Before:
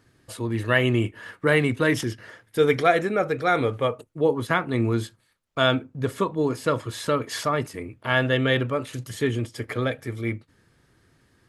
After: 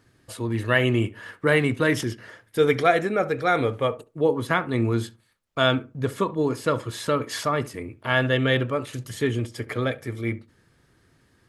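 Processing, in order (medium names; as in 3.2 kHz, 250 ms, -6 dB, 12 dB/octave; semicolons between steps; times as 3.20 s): filtered feedback delay 69 ms, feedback 22%, low-pass 1.5 kHz, level -17.5 dB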